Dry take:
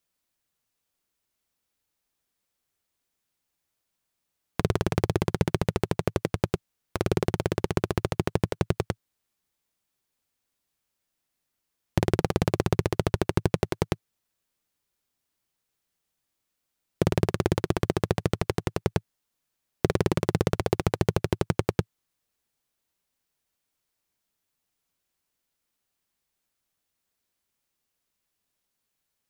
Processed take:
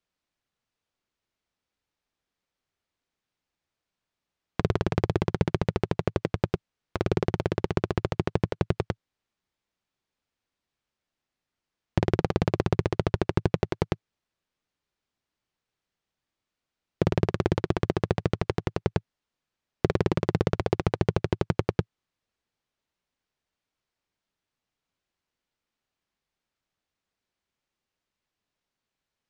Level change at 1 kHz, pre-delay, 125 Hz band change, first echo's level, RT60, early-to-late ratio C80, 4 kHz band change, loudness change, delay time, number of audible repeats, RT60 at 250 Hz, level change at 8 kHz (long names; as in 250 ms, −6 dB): −0.5 dB, no reverb audible, 0.0 dB, no echo audible, no reverb audible, no reverb audible, −3.0 dB, −0.5 dB, no echo audible, no echo audible, no reverb audible, −9.0 dB